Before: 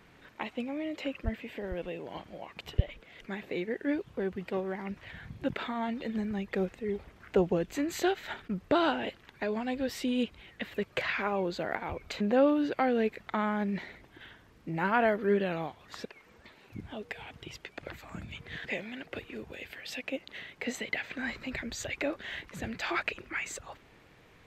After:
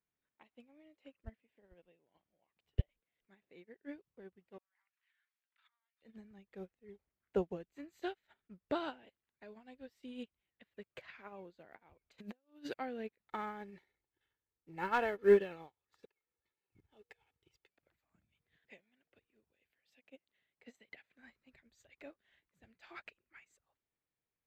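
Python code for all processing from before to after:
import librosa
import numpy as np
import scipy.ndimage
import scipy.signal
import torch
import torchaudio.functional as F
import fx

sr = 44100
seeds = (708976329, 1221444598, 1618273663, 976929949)

y = fx.chain(x, sr, fx.over_compress(threshold_db=-40.0, ratio=-1.0),
    fx.highpass(hz=1200.0, slope=24), at=(4.58, 6.02))
y = fx.chain(y, sr, fx.high_shelf(hz=3500.0, db=10.5),
    fx.over_compress(threshold_db=-31.0, ratio=-0.5), at=(12.18, 12.74))
y = fx.chain(y, sr, fx.leveller(passes=1),
    fx.comb(ms=2.3, depth=0.48), at=(13.29, 17.68))
y = fx.high_shelf(y, sr, hz=11000.0, db=5.5)
y = fx.upward_expand(y, sr, threshold_db=-42.0, expansion=2.5)
y = y * 10.0 ** (-2.0 / 20.0)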